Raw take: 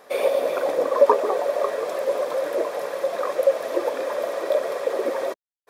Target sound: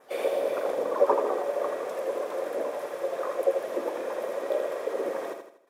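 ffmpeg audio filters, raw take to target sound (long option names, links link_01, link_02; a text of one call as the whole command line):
ffmpeg -i in.wav -filter_complex "[0:a]adynamicequalizer=threshold=0.00158:dfrequency=4400:dqfactor=2.9:tfrequency=4400:tqfactor=2.9:attack=5:release=100:ratio=0.375:range=3:mode=cutabove:tftype=bell,asplit=4[link_01][link_02][link_03][link_04];[link_02]asetrate=29433,aresample=44100,atempo=1.49831,volume=-14dB[link_05];[link_03]asetrate=37084,aresample=44100,atempo=1.18921,volume=-8dB[link_06];[link_04]asetrate=58866,aresample=44100,atempo=0.749154,volume=-17dB[link_07];[link_01][link_05][link_06][link_07]amix=inputs=4:normalize=0,aecho=1:1:81|162|243|324|405:0.501|0.21|0.0884|0.0371|0.0156,volume=-8dB" out.wav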